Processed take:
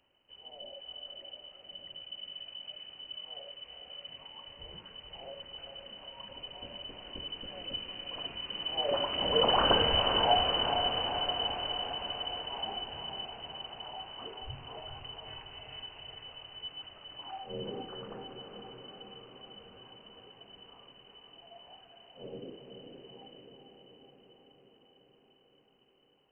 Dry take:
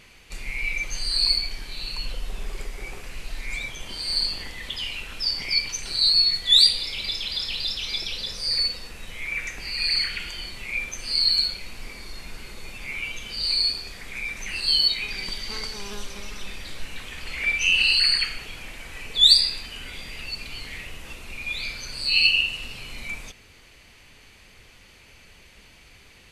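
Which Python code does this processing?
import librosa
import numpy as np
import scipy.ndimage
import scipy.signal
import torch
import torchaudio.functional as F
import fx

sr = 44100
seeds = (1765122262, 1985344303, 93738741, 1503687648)

y = fx.doppler_pass(x, sr, speed_mps=16, closest_m=5.8, pass_at_s=9.77)
y = fx.echo_diffused(y, sr, ms=464, feedback_pct=69, wet_db=-5.5)
y = fx.freq_invert(y, sr, carrier_hz=3000)
y = y * 10.0 ** (7.0 / 20.0)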